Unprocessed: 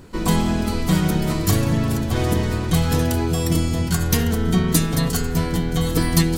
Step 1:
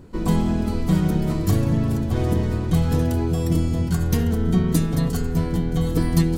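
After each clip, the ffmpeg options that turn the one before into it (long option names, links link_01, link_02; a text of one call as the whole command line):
ffmpeg -i in.wav -af "tiltshelf=frequency=880:gain=5,volume=-5dB" out.wav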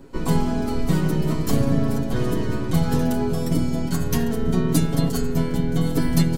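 ffmpeg -i in.wav -filter_complex "[0:a]aecho=1:1:7.4:0.81,acrossover=split=140|1800|6200[link_01][link_02][link_03][link_04];[link_01]aeval=exprs='abs(val(0))':channel_layout=same[link_05];[link_05][link_02][link_03][link_04]amix=inputs=4:normalize=0" out.wav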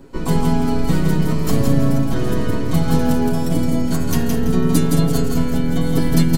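ffmpeg -i in.wav -af "aecho=1:1:166|332|498|664:0.631|0.202|0.0646|0.0207,volume=2dB" out.wav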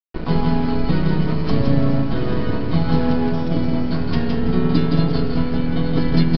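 ffmpeg -i in.wav -af "aeval=exprs='sgn(val(0))*max(abs(val(0))-0.0398,0)':channel_layout=same,aresample=11025,aresample=44100" out.wav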